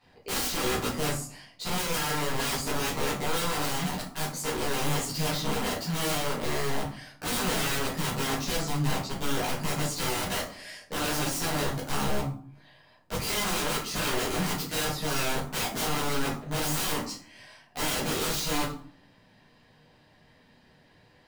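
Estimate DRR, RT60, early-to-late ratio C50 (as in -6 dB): -9.5 dB, 0.50 s, 6.0 dB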